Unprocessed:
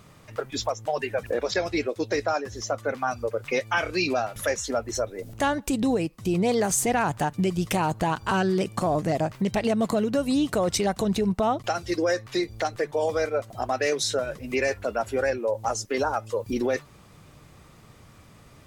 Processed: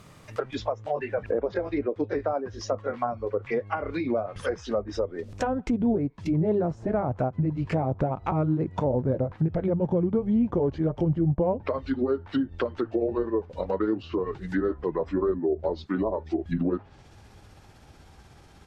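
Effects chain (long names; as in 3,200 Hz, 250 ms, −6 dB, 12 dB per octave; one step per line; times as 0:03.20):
pitch glide at a constant tempo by −7 semitones starting unshifted
treble cut that deepens with the level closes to 750 Hz, closed at −22.5 dBFS
level +1 dB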